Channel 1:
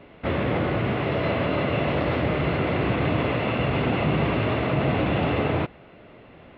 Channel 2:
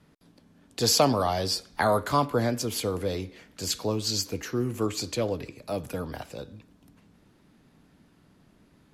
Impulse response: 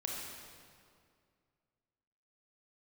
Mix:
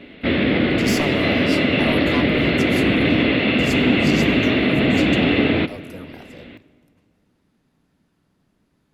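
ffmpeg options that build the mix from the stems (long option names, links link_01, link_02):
-filter_complex "[0:a]equalizer=frequency=125:width_type=o:width=1:gain=-6,equalizer=frequency=250:width_type=o:width=1:gain=10,equalizer=frequency=1000:width_type=o:width=1:gain=-9,equalizer=frequency=2000:width_type=o:width=1:gain=6,equalizer=frequency=4000:width_type=o:width=1:gain=11,volume=2dB,asplit=2[link_01][link_02];[link_02]volume=-15.5dB[link_03];[1:a]aeval=exprs='(tanh(5.01*val(0)+0.65)-tanh(0.65))/5.01':channel_layout=same,volume=-4dB,asplit=2[link_04][link_05];[link_05]volume=-14.5dB[link_06];[2:a]atrim=start_sample=2205[link_07];[link_03][link_06]amix=inputs=2:normalize=0[link_08];[link_08][link_07]afir=irnorm=-1:irlink=0[link_09];[link_01][link_04][link_09]amix=inputs=3:normalize=0"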